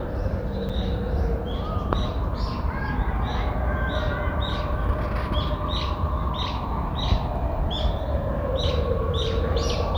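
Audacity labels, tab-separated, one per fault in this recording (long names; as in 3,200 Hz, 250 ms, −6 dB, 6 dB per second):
0.690000	0.700000	drop-out 5.6 ms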